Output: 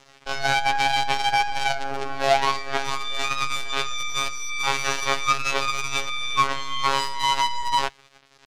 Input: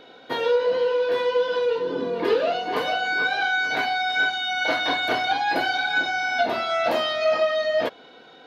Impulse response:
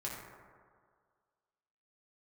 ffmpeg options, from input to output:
-af "bandreject=frequency=300.6:width_type=h:width=4,bandreject=frequency=601.2:width_type=h:width=4,acrusher=bits=4:dc=4:mix=0:aa=0.000001,afftfilt=real='hypot(re,im)*cos(PI*b)':imag='0':win_size=2048:overlap=0.75,lowpass=2900,asetrate=70004,aresample=44100,atempo=0.629961,volume=5dB"

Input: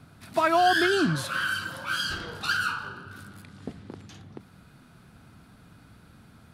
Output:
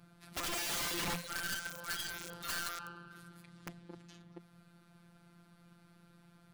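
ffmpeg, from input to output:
ffmpeg -i in.wav -af "afftfilt=real='hypot(re,im)*cos(PI*b)':imag='0':win_size=1024:overlap=0.75,aeval=exprs='(mod(21.1*val(0)+1,2)-1)/21.1':channel_layout=same,volume=-5.5dB" out.wav

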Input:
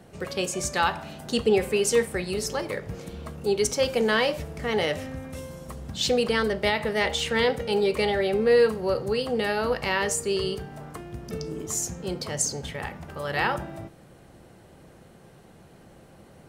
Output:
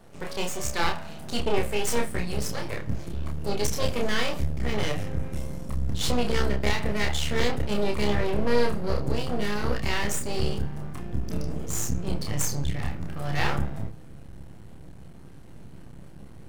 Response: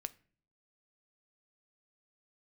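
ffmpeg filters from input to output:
-filter_complex "[0:a]asubboost=boost=4.5:cutoff=190,aeval=exprs='max(val(0),0)':channel_layout=same,asplit=2[link_01][link_02];[1:a]atrim=start_sample=2205,adelay=29[link_03];[link_02][link_03]afir=irnorm=-1:irlink=0,volume=-0.5dB[link_04];[link_01][link_04]amix=inputs=2:normalize=0"

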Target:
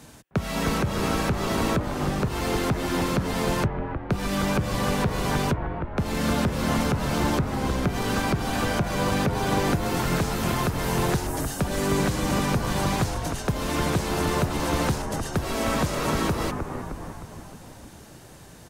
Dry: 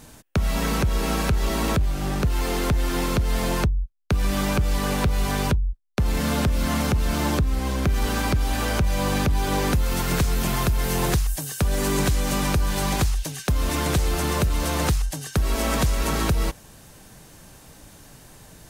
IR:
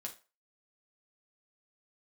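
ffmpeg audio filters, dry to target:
-filter_complex "[0:a]highpass=60,highshelf=frequency=11000:gain=-7,acrossover=split=100|2000[link_01][link_02][link_03];[link_01]acompressor=threshold=-37dB:ratio=6[link_04];[link_02]asplit=9[link_05][link_06][link_07][link_08][link_09][link_10][link_11][link_12][link_13];[link_06]adelay=309,afreqshift=-79,volume=-5dB[link_14];[link_07]adelay=618,afreqshift=-158,volume=-9.6dB[link_15];[link_08]adelay=927,afreqshift=-237,volume=-14.2dB[link_16];[link_09]adelay=1236,afreqshift=-316,volume=-18.7dB[link_17];[link_10]adelay=1545,afreqshift=-395,volume=-23.3dB[link_18];[link_11]adelay=1854,afreqshift=-474,volume=-27.9dB[link_19];[link_12]adelay=2163,afreqshift=-553,volume=-32.5dB[link_20];[link_13]adelay=2472,afreqshift=-632,volume=-37.1dB[link_21];[link_05][link_14][link_15][link_16][link_17][link_18][link_19][link_20][link_21]amix=inputs=9:normalize=0[link_22];[link_03]alimiter=level_in=2.5dB:limit=-24dB:level=0:latency=1:release=15,volume=-2.5dB[link_23];[link_04][link_22][link_23]amix=inputs=3:normalize=0"

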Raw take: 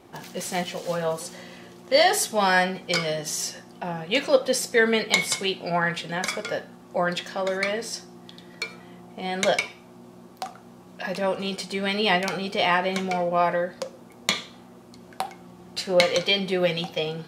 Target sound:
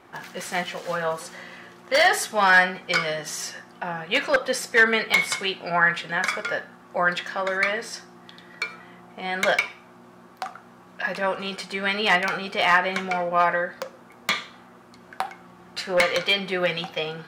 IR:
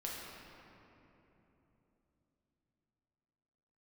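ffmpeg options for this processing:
-af "aeval=exprs='0.251*(abs(mod(val(0)/0.251+3,4)-2)-1)':channel_layout=same,equalizer=frequency=1500:width=0.83:gain=12.5,volume=-4.5dB"

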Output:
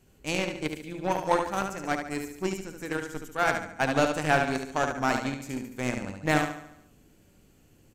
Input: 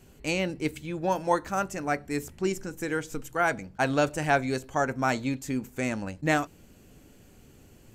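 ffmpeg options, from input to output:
ffmpeg -i in.wav -af "aecho=1:1:72|144|216|288|360|432|504:0.631|0.347|0.191|0.105|0.0577|0.0318|0.0175,aeval=exprs='0.335*(cos(1*acos(clip(val(0)/0.335,-1,1)))-cos(1*PI/2))+0.0075*(cos(6*acos(clip(val(0)/0.335,-1,1)))-cos(6*PI/2))+0.0266*(cos(7*acos(clip(val(0)/0.335,-1,1)))-cos(7*PI/2))':channel_layout=same" out.wav

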